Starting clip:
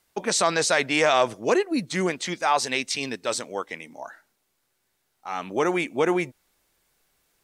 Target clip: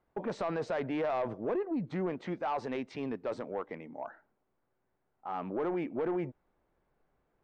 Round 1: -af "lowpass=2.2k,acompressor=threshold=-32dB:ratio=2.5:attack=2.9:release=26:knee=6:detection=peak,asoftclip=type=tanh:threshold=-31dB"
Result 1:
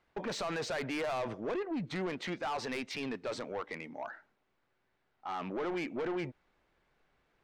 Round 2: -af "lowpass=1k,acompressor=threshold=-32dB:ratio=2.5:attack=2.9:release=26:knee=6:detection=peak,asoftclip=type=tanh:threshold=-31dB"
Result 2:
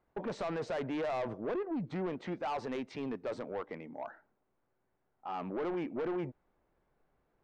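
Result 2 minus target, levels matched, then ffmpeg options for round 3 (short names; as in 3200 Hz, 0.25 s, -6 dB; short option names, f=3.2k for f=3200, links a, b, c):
soft clip: distortion +7 dB
-af "lowpass=1k,acompressor=threshold=-32dB:ratio=2.5:attack=2.9:release=26:knee=6:detection=peak,asoftclip=type=tanh:threshold=-25dB"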